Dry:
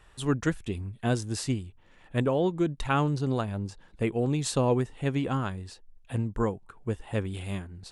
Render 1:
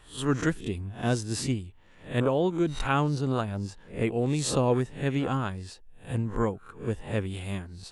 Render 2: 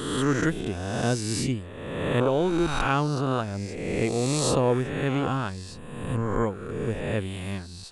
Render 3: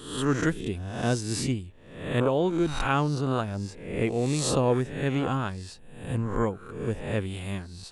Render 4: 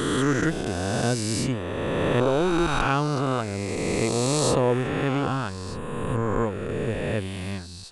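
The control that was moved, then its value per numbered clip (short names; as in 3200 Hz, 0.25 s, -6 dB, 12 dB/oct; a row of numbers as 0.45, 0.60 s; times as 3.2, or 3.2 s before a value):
spectral swells, rising 60 dB in: 0.33, 1.47, 0.7, 3.09 s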